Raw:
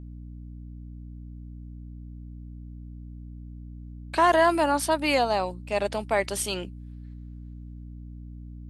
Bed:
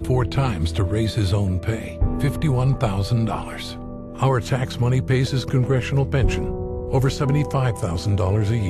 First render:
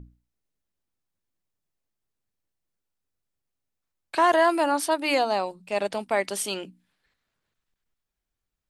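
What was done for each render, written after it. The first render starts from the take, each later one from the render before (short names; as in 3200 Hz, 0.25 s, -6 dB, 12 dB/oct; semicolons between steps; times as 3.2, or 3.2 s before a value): notches 60/120/180/240/300 Hz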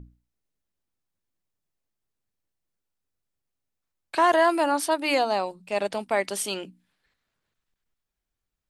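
nothing audible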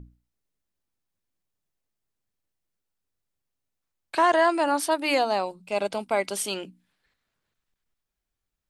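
4.22–4.68 Chebyshev low-pass 9200 Hz, order 10; 5.43–6.37 Butterworth band-stop 1800 Hz, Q 7.3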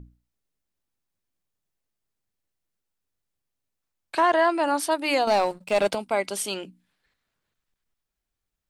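4.2–4.64 bell 7300 Hz -9 dB; 5.27–5.95 sample leveller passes 2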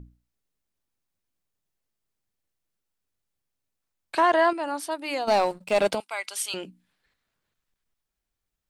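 4.53–5.28 gain -6.5 dB; 6–6.54 HPF 1300 Hz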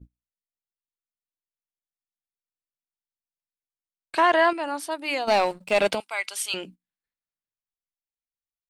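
gate -45 dBFS, range -23 dB; dynamic EQ 2500 Hz, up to +6 dB, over -38 dBFS, Q 1.1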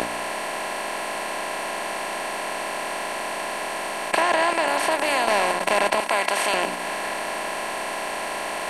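per-bin compression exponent 0.2; compressor 2:1, threshold -22 dBFS, peak gain reduction 7 dB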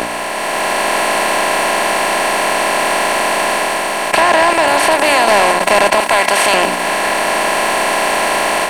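sample leveller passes 2; AGC gain up to 7.5 dB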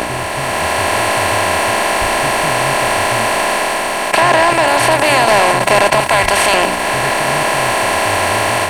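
add bed -8 dB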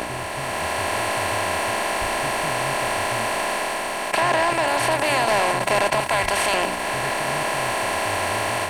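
gain -9 dB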